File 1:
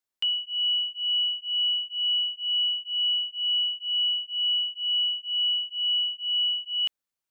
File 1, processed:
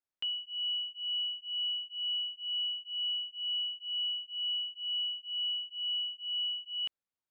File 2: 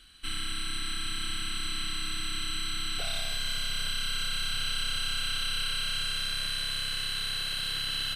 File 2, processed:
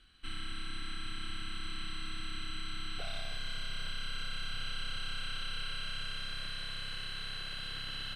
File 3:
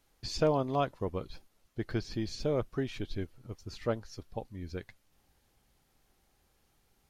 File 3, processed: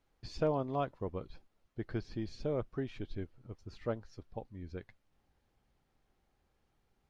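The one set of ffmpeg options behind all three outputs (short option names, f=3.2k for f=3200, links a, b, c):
-af "aemphasis=mode=reproduction:type=75kf,volume=-4dB"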